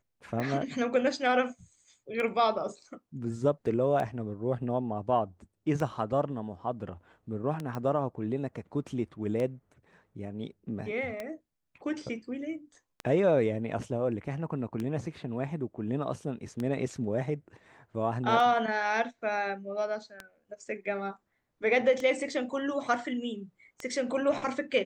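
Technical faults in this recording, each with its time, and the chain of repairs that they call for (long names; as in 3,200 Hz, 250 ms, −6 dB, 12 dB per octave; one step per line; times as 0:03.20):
scratch tick 33 1/3 rpm −21 dBFS
0:07.75: click −23 dBFS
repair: click removal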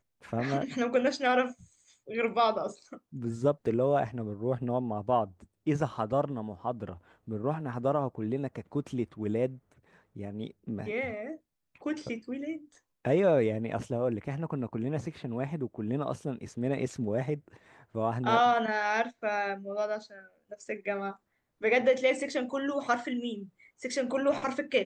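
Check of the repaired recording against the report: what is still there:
0:07.75: click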